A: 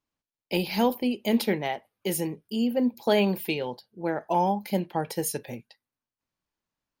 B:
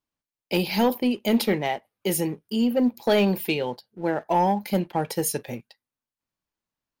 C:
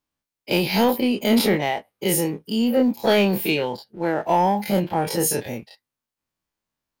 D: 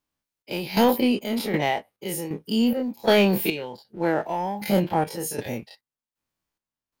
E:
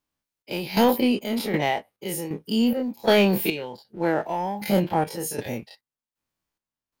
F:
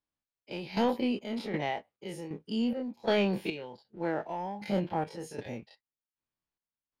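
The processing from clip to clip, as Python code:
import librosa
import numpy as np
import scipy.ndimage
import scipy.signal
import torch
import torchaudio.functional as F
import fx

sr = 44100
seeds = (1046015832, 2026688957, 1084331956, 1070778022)

y1 = fx.leveller(x, sr, passes=1)
y2 = fx.spec_dilate(y1, sr, span_ms=60)
y3 = fx.chopper(y2, sr, hz=1.3, depth_pct=65, duty_pct=55)
y4 = y3
y5 = fx.air_absorb(y4, sr, metres=86.0)
y5 = F.gain(torch.from_numpy(y5), -8.5).numpy()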